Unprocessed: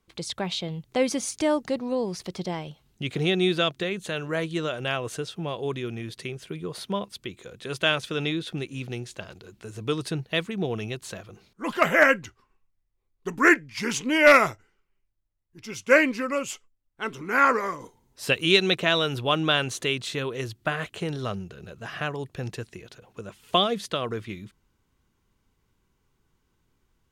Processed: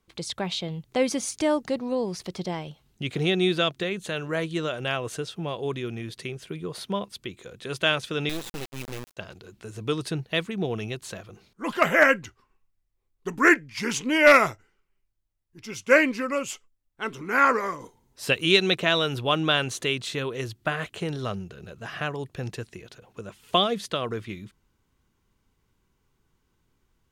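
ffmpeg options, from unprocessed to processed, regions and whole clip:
ffmpeg -i in.wav -filter_complex "[0:a]asettb=1/sr,asplit=3[link_01][link_02][link_03];[link_01]atrim=end=8.294[link_04];[link_02]atrim=start=8.29:end=9.17,asetpts=PTS-STARTPTS,afade=type=in:duration=0.004:curve=qsin,afade=type=out:start_time=0.876:duration=0.004:curve=qsin,acrusher=bits=3:dc=4:mix=0:aa=0.000001,agate=range=-33dB:threshold=-43dB:ratio=3:release=100:detection=peak[link_05];[link_03]atrim=start=9.166[link_06];[link_04][link_05]acrossfade=duration=0.004:curve1=hsin:curve2=qsin[link_07];[link_07][link_06]acrossfade=duration=0.004:curve1=qsin:curve2=hsin" out.wav

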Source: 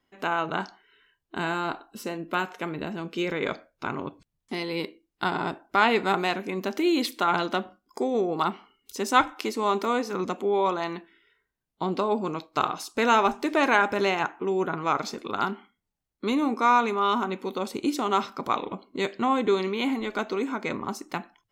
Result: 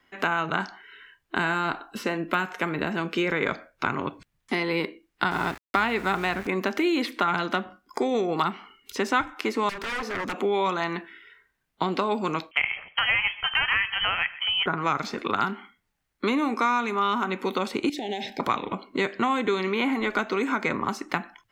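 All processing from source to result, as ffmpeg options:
ffmpeg -i in.wav -filter_complex "[0:a]asettb=1/sr,asplit=3[link_01][link_02][link_03];[link_01]atrim=end=5.314[link_04];[link_02]atrim=start=5.31:end=6.47,asetpts=PTS-STARTPTS,afade=type=in:duration=0.004:curve=qsin,afade=type=out:start_time=1.156:duration=0.004:curve=qsin,aeval=exprs='val(0)+0.00316*(sin(2*PI*60*n/s)+sin(2*PI*2*60*n/s)/2+sin(2*PI*3*60*n/s)/3+sin(2*PI*4*60*n/s)/4+sin(2*PI*5*60*n/s)/5)':channel_layout=same,aeval=exprs='val(0)*gte(abs(val(0)),0.0106)':channel_layout=same[link_05];[link_03]atrim=start=6.466[link_06];[link_04][link_05]acrossfade=duration=0.004:curve1=hsin:curve2=qsin[link_07];[link_07][link_06]acrossfade=duration=0.004:curve1=qsin:curve2=hsin,asettb=1/sr,asplit=3[link_08][link_09][link_10];[link_08]atrim=end=9.694[link_11];[link_09]atrim=start=9.69:end=10.41,asetpts=PTS-STARTPTS,afade=type=in:duration=0.004:curve=qsin,afade=type=out:start_time=0.716:duration=0.004:curve=qsin,aeval=exprs='0.0376*(abs(mod(val(0)/0.0376+3,4)-2)-1)':channel_layout=same,acompressor=threshold=-37dB:ratio=4:attack=3.2:release=140:knee=1:detection=peak[link_12];[link_10]atrim=start=10.406[link_13];[link_11][link_12]acrossfade=duration=0.004:curve1=hsin:curve2=qsin[link_14];[link_14][link_13]acrossfade=duration=0.004:curve1=qsin:curve2=hsin,asettb=1/sr,asplit=3[link_15][link_16][link_17];[link_15]atrim=end=12.514[link_18];[link_16]atrim=start=12.51:end=14.66,asetpts=PTS-STARTPTS,afade=type=in:duration=0.004:curve=qsin,afade=type=out:start_time=2.146:duration=0.004:curve=qsin,lowpass=frequency=2900:width_type=q:width=0.5098,lowpass=frequency=2900:width_type=q:width=0.6013,lowpass=frequency=2900:width_type=q:width=0.9,lowpass=frequency=2900:width_type=q:width=2.563,afreqshift=-3400,asubboost=boost=7:cutoff=200,aecho=1:1:129:0.0668,atrim=end_sample=94815[link_19];[link_17]atrim=start=14.656[link_20];[link_18][link_19]acrossfade=duration=0.004:curve1=hsin:curve2=qsin[link_21];[link_21][link_20]acrossfade=duration=0.004:curve1=qsin:curve2=hsin,asettb=1/sr,asplit=3[link_22][link_23][link_24];[link_22]atrim=end=17.894[link_25];[link_23]atrim=start=17.89:end=18.4,asetpts=PTS-STARTPTS,afade=type=in:duration=0.004:curve=qsin,afade=type=out:start_time=0.506:duration=0.004:curve=qsin,equalizer=frequency=3700:width=4.9:gain=6,acompressor=threshold=-31dB:ratio=10:attack=3.2:release=140:knee=1:detection=peak,asuperstop=centerf=1200:order=12:qfactor=1.5[link_26];[link_24]atrim=start=18.396[link_27];[link_25][link_26]acrossfade=duration=0.004:curve1=hsin:curve2=qsin[link_28];[link_28][link_27]acrossfade=duration=0.004:curve1=qsin:curve2=hsin,equalizer=frequency=1800:width=0.84:gain=9,acrossover=split=230|2000|4800[link_29][link_30][link_31][link_32];[link_29]acompressor=threshold=-40dB:ratio=4[link_33];[link_30]acompressor=threshold=-31dB:ratio=4[link_34];[link_31]acompressor=threshold=-43dB:ratio=4[link_35];[link_32]acompressor=threshold=-54dB:ratio=4[link_36];[link_33][link_34][link_35][link_36]amix=inputs=4:normalize=0,volume=6dB" out.wav

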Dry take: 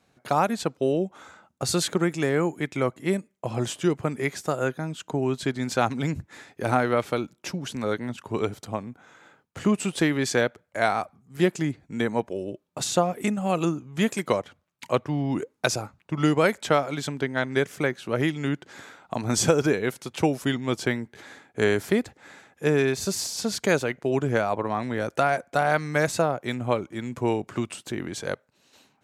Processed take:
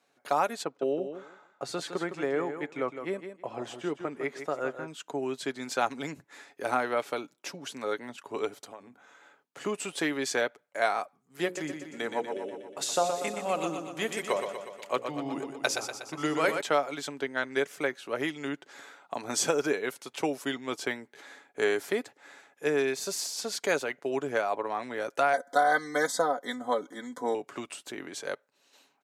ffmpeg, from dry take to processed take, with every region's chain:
ffmpeg -i in.wav -filter_complex "[0:a]asettb=1/sr,asplit=3[link_01][link_02][link_03];[link_01]atrim=end=0.634[link_04];[link_02]atrim=start=0.63:end=4.88,asetpts=PTS-STARTPTS,afade=type=in:duration=0.004:curve=qsin,afade=type=out:start_time=4.246:duration=0.004:curve=qsin,lowpass=frequency=1800:poles=1,aecho=1:1:160|320|480:0.355|0.0639|0.0115,atrim=end_sample=187425[link_05];[link_03]atrim=start=4.876[link_06];[link_04][link_05]acrossfade=duration=0.004:curve1=hsin:curve2=qsin[link_07];[link_07][link_06]acrossfade=duration=0.004:curve1=qsin:curve2=hsin,asettb=1/sr,asplit=3[link_08][link_09][link_10];[link_08]atrim=end=8.644[link_11];[link_09]atrim=start=8.64:end=9.61,asetpts=PTS-STARTPTS,afade=type=in:duration=0.004:curve=qsin,afade=type=out:start_time=0.966:duration=0.004:curve=qsin,bandreject=frequency=52.14:width_type=h:width=4,bandreject=frequency=104.28:width_type=h:width=4,bandreject=frequency=156.42:width_type=h:width=4,bandreject=frequency=208.56:width_type=h:width=4,bandreject=frequency=260.7:width_type=h:width=4,bandreject=frequency=312.84:width_type=h:width=4,acompressor=threshold=-35dB:ratio=4:attack=3.2:release=140:knee=1:detection=peak[link_12];[link_10]atrim=start=9.606[link_13];[link_11][link_12]acrossfade=duration=0.004:curve1=hsin:curve2=qsin[link_14];[link_14][link_13]acrossfade=duration=0.004:curve1=qsin:curve2=hsin,asettb=1/sr,asplit=3[link_15][link_16][link_17];[link_15]atrim=end=11.454[link_18];[link_16]atrim=start=11.45:end=16.61,asetpts=PTS-STARTPTS,afade=type=in:duration=0.004:curve=qsin,afade=type=out:start_time=5.156:duration=0.004:curve=qsin,bandreject=frequency=60:width_type=h:width=6,bandreject=frequency=120:width_type=h:width=6,bandreject=frequency=180:width_type=h:width=6,bandreject=frequency=240:width_type=h:width=6,bandreject=frequency=300:width_type=h:width=6,bandreject=frequency=360:width_type=h:width=6,bandreject=frequency=420:width_type=h:width=6,bandreject=frequency=480:width_type=h:width=6,bandreject=frequency=540:width_type=h:width=6,aecho=1:1:121|242|363|484|605|726|847|968:0.447|0.268|0.161|0.0965|0.0579|0.0347|0.0208|0.0125,atrim=end_sample=227556[link_19];[link_17]atrim=start=16.606[link_20];[link_18][link_19]acrossfade=duration=0.004:curve1=hsin:curve2=qsin[link_21];[link_21][link_20]acrossfade=duration=0.004:curve1=qsin:curve2=hsin,asettb=1/sr,asplit=3[link_22][link_23][link_24];[link_22]atrim=end=25.334[link_25];[link_23]atrim=start=25.33:end=27.35,asetpts=PTS-STARTPTS,afade=type=in:duration=0.004:curve=qsin,afade=type=out:start_time=2.016:duration=0.004:curve=qsin,aecho=1:1:4:0.79,atrim=end_sample=89082,acompressor=mode=upward:threshold=-31dB:ratio=2.5:attack=3.2:release=140:knee=2.83:detection=peak,asuperstop=centerf=2600:order=20:qfactor=2.9[link_26];[link_24]atrim=start=27.346[link_27];[link_25][link_26]acrossfade=duration=0.004:curve1=hsin:curve2=qsin[link_28];[link_28][link_27]acrossfade=duration=0.004:curve1=qsin:curve2=hsin,highpass=360,aecho=1:1:7.1:0.3,volume=-4dB" out.wav

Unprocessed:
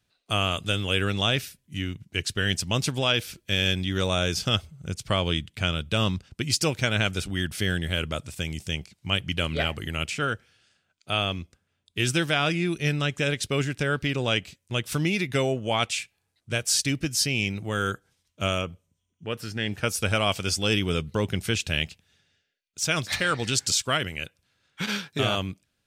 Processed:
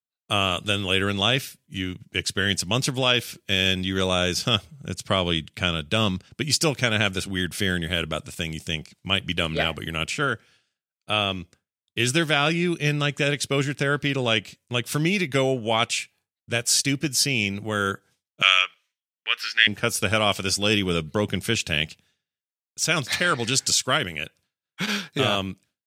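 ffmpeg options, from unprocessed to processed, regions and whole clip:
ffmpeg -i in.wav -filter_complex "[0:a]asettb=1/sr,asplit=3[link_01][link_02][link_03];[link_01]atrim=end=18.424[link_04];[link_02]atrim=start=18.42:end=19.67,asetpts=PTS-STARTPTS,afade=type=in:duration=0.004:curve=qsin,afade=type=out:start_time=1.246:duration=0.004:curve=qsin,highshelf=frequency=6100:width_type=q:width=1.5:gain=-8.5,acontrast=61,highpass=frequency=1800:width_type=q:width=1.9[link_05];[link_03]atrim=start=19.666[link_06];[link_04][link_05]acrossfade=duration=0.004:curve1=hsin:curve2=qsin[link_07];[link_07][link_06]acrossfade=duration=0.004:curve1=qsin:curve2=hsin,highpass=120,agate=range=-33dB:threshold=-53dB:ratio=3:detection=peak,volume=3dB" out.wav

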